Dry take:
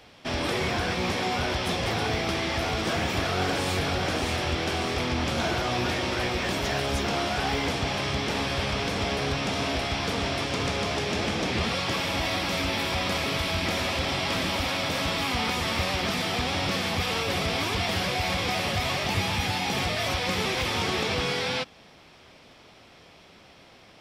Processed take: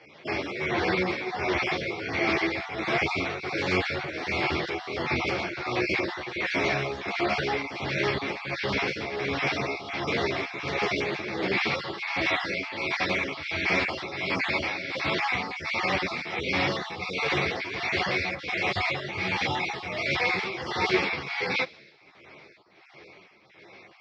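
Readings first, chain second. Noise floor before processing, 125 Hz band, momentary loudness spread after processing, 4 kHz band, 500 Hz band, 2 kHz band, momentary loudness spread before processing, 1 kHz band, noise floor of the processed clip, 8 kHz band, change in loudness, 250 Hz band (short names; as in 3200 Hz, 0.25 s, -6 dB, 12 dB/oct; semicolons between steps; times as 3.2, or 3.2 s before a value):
-53 dBFS, -6.5 dB, 5 LU, -5.0 dB, -0.5 dB, +2.5 dB, 1 LU, -2.0 dB, -54 dBFS, -11.5 dB, -1.0 dB, -2.0 dB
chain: random spectral dropouts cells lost 28%; tremolo triangle 1.4 Hz, depth 75%; speaker cabinet 140–4900 Hz, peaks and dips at 140 Hz +4 dB, 230 Hz -7 dB, 360 Hz +7 dB, 2200 Hz +9 dB, 3100 Hz -6 dB; on a send: thin delay 64 ms, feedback 73%, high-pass 3000 Hz, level -20 dB; on the sum: ensemble effect; gain +6 dB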